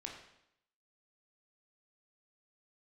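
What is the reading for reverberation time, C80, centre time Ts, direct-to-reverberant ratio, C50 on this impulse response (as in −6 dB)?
0.75 s, 7.0 dB, 35 ms, 0.0 dB, 4.5 dB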